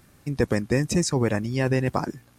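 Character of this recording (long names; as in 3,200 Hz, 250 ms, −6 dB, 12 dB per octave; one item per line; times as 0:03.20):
background noise floor −57 dBFS
spectral slope −5.5 dB per octave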